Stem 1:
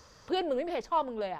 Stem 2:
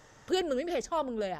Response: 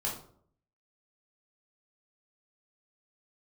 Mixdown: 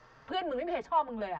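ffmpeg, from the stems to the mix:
-filter_complex "[0:a]highpass=830,aecho=1:1:4.4:0.51,volume=1.19,asplit=2[s0][s1];[1:a]asplit=2[s2][s3];[s3]adelay=6.1,afreqshift=1.7[s4];[s2][s4]amix=inputs=2:normalize=1,volume=-1,adelay=1.2,volume=1[s5];[s1]apad=whole_len=61766[s6];[s5][s6]sidechaincompress=threshold=0.0224:ratio=8:attack=16:release=122[s7];[s0][s7]amix=inputs=2:normalize=0,lowpass=2200"

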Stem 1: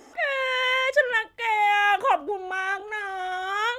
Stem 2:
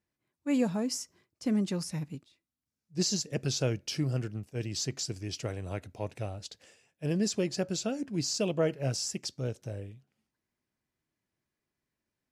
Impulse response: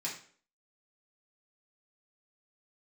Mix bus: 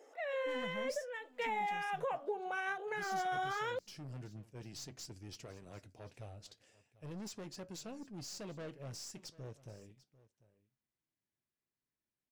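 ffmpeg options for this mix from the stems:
-filter_complex "[0:a]acompressor=threshold=0.0562:ratio=6,highpass=f=490:t=q:w=4,flanger=delay=0.4:depth=8.6:regen=-71:speed=0.76:shape=sinusoidal,volume=0.891,afade=t=in:st=1.13:d=0.54:silence=0.298538[s0];[1:a]aeval=exprs='(tanh(44.7*val(0)+0.3)-tanh(0.3))/44.7':c=same,flanger=delay=3.2:depth=5:regen=-73:speed=0.39:shape=triangular,volume=0.531,asplit=2[s1][s2];[s2]volume=0.1,aecho=0:1:744:1[s3];[s0][s1][s3]amix=inputs=3:normalize=0,alimiter=level_in=1.78:limit=0.0631:level=0:latency=1:release=498,volume=0.562"

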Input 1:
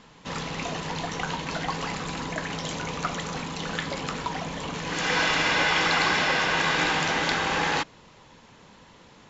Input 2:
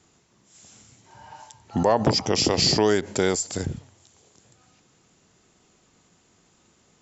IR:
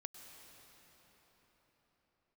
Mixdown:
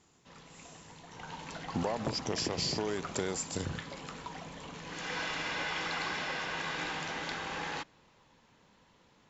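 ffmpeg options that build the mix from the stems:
-filter_complex "[0:a]volume=0.224,afade=t=in:st=1.05:d=0.41:silence=0.354813,asplit=2[s0][s1];[s1]volume=0.0794[s2];[1:a]acompressor=threshold=0.0631:ratio=6,volume=0.501[s3];[2:a]atrim=start_sample=2205[s4];[s2][s4]afir=irnorm=-1:irlink=0[s5];[s0][s3][s5]amix=inputs=3:normalize=0"

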